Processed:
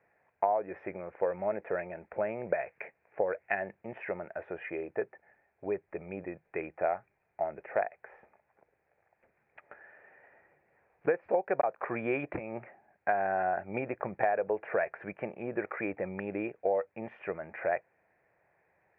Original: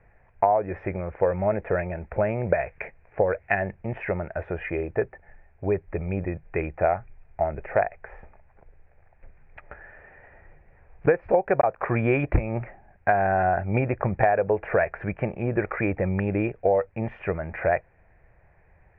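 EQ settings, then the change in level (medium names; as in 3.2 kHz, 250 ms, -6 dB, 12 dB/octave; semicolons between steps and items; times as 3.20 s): high-pass 250 Hz 12 dB/octave; -7.5 dB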